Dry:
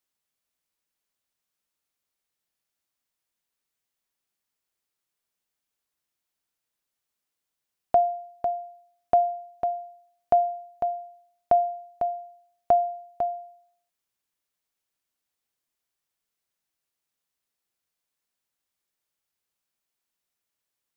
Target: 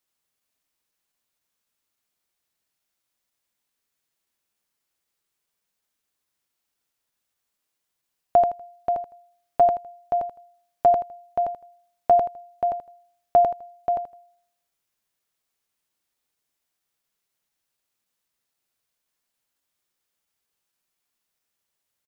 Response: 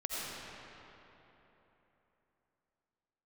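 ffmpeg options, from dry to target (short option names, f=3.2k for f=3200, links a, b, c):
-af "aecho=1:1:75|150|225:0.668|0.16|0.0385,atempo=0.95,volume=2.5dB"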